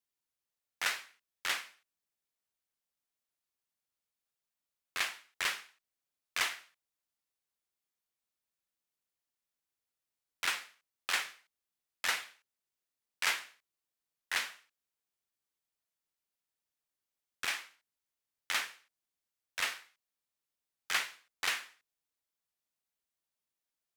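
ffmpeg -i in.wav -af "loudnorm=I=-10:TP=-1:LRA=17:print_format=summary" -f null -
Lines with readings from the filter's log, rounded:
Input Integrated:    -35.6 LUFS
Input True Peak:     -17.0 dBTP
Input LRA:             6.4 LU
Input Threshold:     -46.8 LUFS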